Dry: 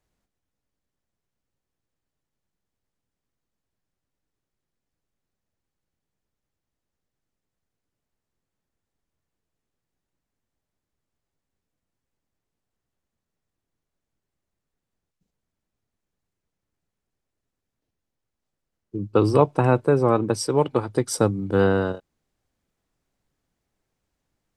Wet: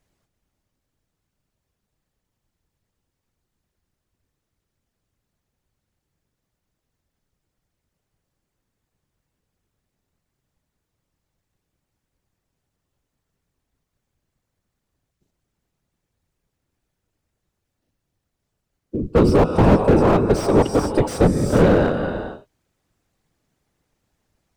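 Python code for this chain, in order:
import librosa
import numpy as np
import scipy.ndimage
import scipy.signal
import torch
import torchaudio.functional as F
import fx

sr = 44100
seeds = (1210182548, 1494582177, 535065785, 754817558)

y = fx.whisperise(x, sr, seeds[0])
y = fx.rev_gated(y, sr, seeds[1], gate_ms=470, shape='rising', drr_db=9.0)
y = fx.slew_limit(y, sr, full_power_hz=67.0)
y = y * librosa.db_to_amplitude(6.0)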